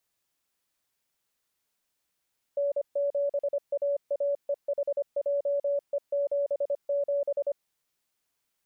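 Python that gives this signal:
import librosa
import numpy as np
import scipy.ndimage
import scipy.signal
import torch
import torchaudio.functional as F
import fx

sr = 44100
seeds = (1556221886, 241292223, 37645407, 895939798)

y = fx.morse(sr, text='N7AAEHJE77', wpm=25, hz=568.0, level_db=-24.0)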